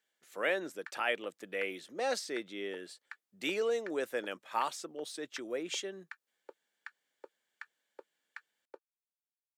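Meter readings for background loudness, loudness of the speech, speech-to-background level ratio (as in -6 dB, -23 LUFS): -55.5 LUFS, -36.5 LUFS, 19.0 dB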